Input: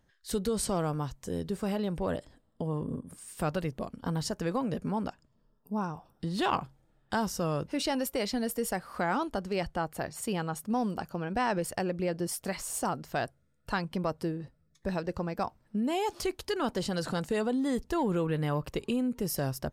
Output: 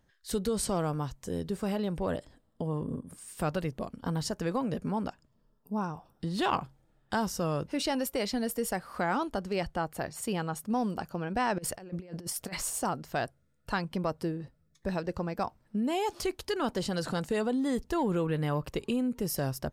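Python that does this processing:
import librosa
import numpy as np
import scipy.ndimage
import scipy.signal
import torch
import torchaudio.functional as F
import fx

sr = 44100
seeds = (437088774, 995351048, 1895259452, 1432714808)

y = fx.over_compress(x, sr, threshold_db=-37.0, ratio=-0.5, at=(11.58, 12.7))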